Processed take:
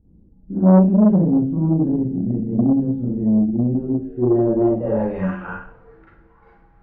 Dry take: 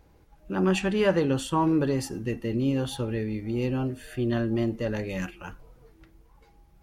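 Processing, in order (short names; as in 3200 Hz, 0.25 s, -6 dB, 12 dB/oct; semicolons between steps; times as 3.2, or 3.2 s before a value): Schroeder reverb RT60 0.52 s, combs from 33 ms, DRR -7.5 dB; low-pass sweep 230 Hz -> 1500 Hz, 3.7–5.57; core saturation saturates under 380 Hz; gain -1.5 dB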